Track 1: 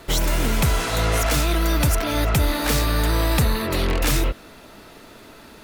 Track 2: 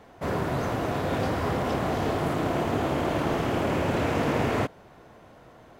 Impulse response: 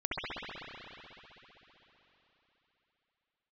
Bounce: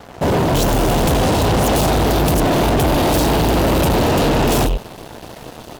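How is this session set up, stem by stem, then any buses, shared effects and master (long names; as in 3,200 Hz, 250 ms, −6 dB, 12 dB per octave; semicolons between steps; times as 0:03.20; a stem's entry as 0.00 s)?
−10.0 dB, 0.45 s, no send, no processing
+1.5 dB, 0.00 s, no send, no processing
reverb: not used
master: Chebyshev band-stop filter 950–2,700 Hz, order 3; leveller curve on the samples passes 5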